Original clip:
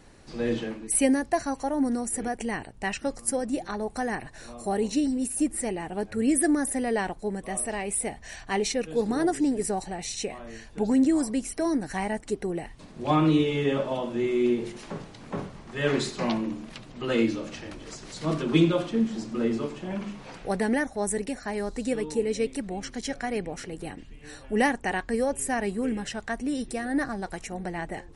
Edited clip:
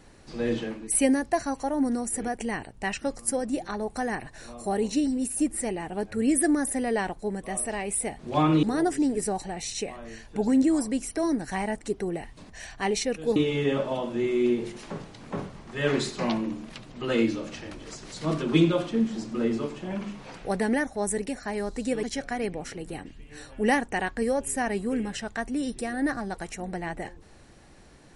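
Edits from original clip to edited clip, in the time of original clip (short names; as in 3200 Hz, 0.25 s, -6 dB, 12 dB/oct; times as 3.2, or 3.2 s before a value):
8.19–9.05 swap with 12.92–13.36
22.03–22.95 cut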